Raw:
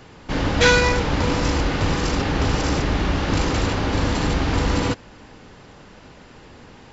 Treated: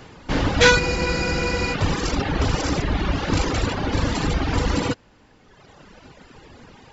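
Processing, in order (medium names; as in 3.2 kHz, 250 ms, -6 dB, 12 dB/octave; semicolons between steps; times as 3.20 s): reverb removal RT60 1.6 s; spectral freeze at 0.82 s, 0.92 s; trim +2 dB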